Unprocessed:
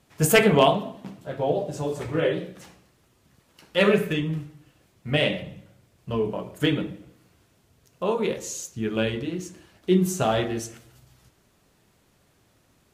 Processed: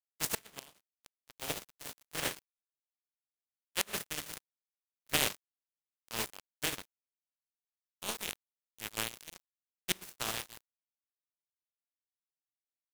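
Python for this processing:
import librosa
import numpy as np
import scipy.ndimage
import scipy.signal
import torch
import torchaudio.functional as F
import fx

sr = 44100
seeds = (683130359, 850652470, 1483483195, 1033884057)

y = fx.spec_flatten(x, sr, power=0.24)
y = np.sign(y) * np.maximum(np.abs(y) - 10.0 ** (-22.5 / 20.0), 0.0)
y = fx.gate_flip(y, sr, shuts_db=-6.0, range_db=-28)
y = fx.rider(y, sr, range_db=3, speed_s=0.5)
y = y * 10.0 ** (-5.5 / 20.0)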